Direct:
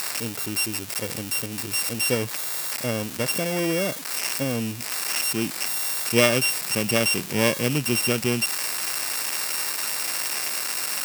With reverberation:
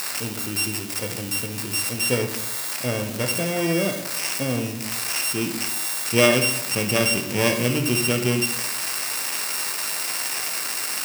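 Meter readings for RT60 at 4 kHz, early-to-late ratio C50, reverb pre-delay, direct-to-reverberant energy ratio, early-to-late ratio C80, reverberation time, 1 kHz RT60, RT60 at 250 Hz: 0.50 s, 8.0 dB, 12 ms, 4.0 dB, 11.0 dB, 0.80 s, 0.75 s, 1.0 s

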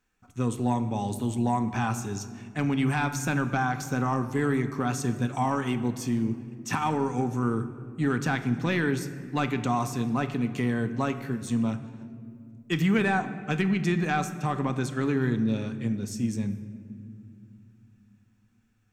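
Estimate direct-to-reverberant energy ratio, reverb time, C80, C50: 9.0 dB, 2.4 s, 13.0 dB, 12.0 dB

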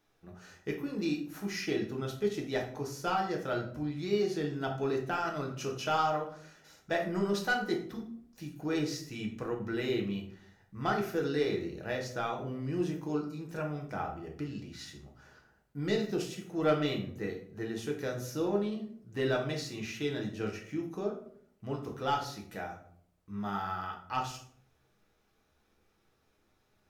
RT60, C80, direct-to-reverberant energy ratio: 0.65 s, 12.5 dB, 0.0 dB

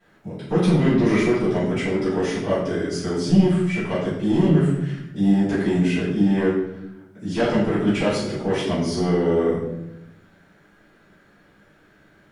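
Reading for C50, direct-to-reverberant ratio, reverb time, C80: 1.0 dB, -16.0 dB, 0.90 s, 4.5 dB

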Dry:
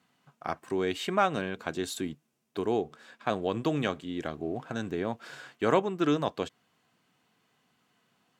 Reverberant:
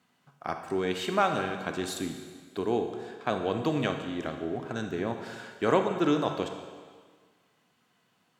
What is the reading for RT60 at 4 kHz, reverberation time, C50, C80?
1.6 s, 1.6 s, 6.0 dB, 8.0 dB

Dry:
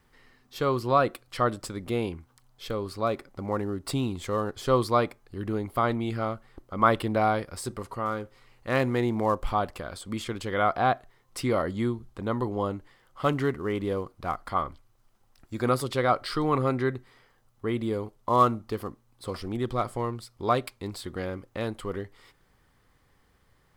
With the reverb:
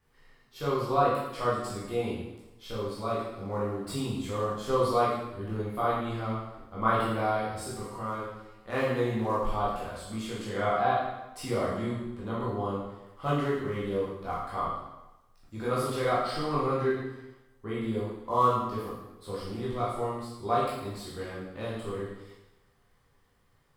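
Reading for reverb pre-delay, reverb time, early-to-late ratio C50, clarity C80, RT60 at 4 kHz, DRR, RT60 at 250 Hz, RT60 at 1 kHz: 6 ms, 1.0 s, 0.5 dB, 3.0 dB, 0.95 s, -8.0 dB, 0.95 s, 1.0 s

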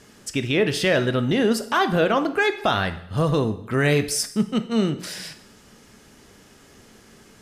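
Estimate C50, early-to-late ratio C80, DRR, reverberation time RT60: 13.0 dB, 16.0 dB, 9.5 dB, 0.70 s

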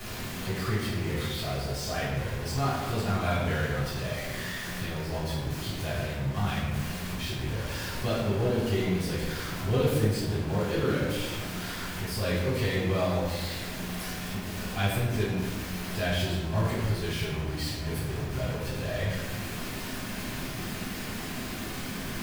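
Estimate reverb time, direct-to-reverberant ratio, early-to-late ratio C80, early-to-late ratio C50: 1.3 s, -10.5 dB, 2.5 dB, 0.0 dB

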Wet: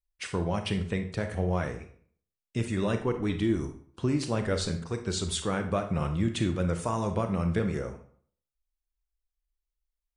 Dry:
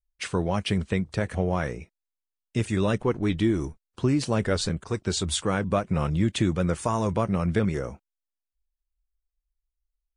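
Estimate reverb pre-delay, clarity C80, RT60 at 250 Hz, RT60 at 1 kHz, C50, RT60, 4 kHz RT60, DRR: 30 ms, 14.0 dB, 0.60 s, 0.55 s, 9.5 dB, 0.55 s, 0.40 s, 7.0 dB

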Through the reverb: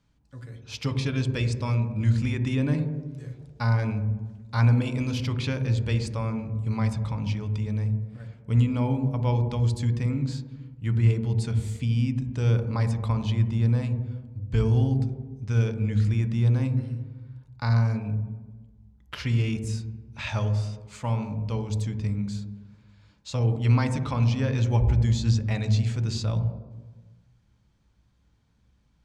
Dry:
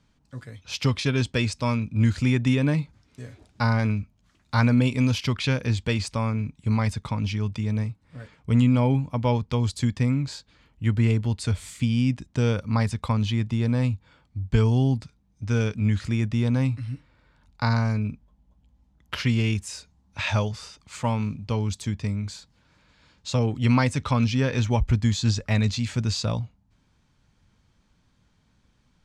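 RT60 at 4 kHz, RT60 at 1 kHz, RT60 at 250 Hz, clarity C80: n/a, 1.2 s, 1.4 s, 10.5 dB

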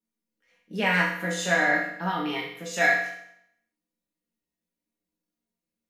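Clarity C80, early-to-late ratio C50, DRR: 7.5 dB, 4.0 dB, -5.0 dB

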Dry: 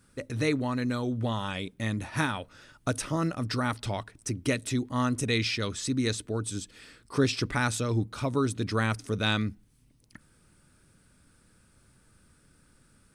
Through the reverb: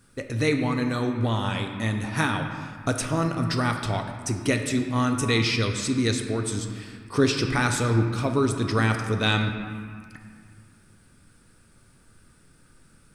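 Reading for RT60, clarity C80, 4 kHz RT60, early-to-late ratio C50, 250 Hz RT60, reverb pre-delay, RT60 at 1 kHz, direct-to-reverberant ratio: 2.0 s, 7.0 dB, 1.4 s, 6.0 dB, 2.4 s, 3 ms, 2.1 s, 4.0 dB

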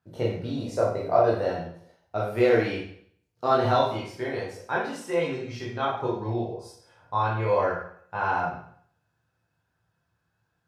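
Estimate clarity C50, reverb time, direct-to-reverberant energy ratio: 2.5 dB, 0.60 s, -5.0 dB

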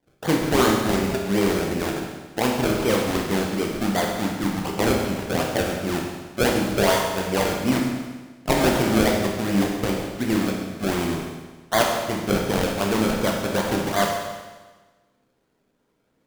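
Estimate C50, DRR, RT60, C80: 2.5 dB, -0.5 dB, 1.3 s, 4.5 dB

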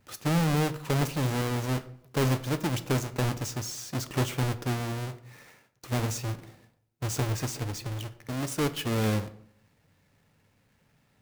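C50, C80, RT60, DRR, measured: 16.0 dB, 18.5 dB, 0.70 s, 11.0 dB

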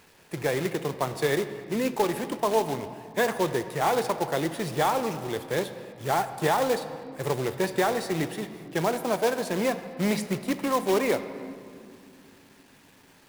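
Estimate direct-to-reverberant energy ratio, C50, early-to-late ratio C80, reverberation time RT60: 10.0 dB, 11.0 dB, 12.0 dB, 2.6 s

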